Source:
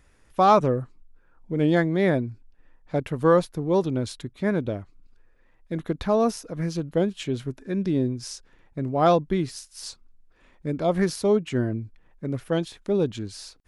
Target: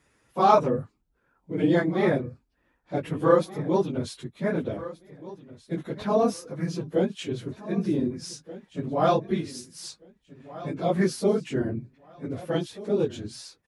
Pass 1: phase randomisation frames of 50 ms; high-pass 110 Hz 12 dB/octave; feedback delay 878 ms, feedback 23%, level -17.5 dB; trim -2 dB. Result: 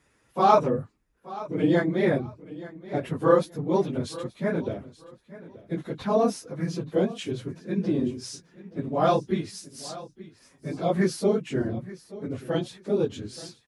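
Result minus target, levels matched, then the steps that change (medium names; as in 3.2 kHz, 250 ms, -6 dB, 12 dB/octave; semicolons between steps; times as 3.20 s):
echo 651 ms early
change: feedback delay 1529 ms, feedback 23%, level -17.5 dB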